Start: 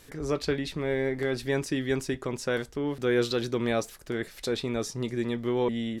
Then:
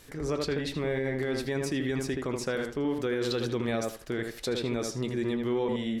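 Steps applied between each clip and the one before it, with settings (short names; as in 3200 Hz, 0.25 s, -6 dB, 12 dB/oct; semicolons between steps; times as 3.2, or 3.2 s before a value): tape echo 78 ms, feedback 23%, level -4.5 dB, low-pass 2300 Hz; limiter -21 dBFS, peak gain reduction 9 dB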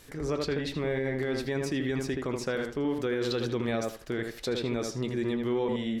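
dynamic EQ 9900 Hz, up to -5 dB, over -55 dBFS, Q 1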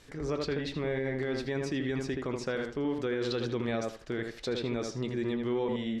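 LPF 6800 Hz 12 dB/oct; gain -2 dB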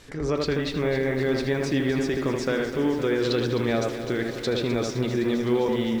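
lo-fi delay 0.257 s, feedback 80%, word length 9-bit, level -11 dB; gain +7 dB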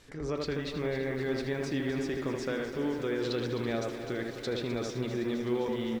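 speakerphone echo 0.33 s, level -9 dB; gain -8 dB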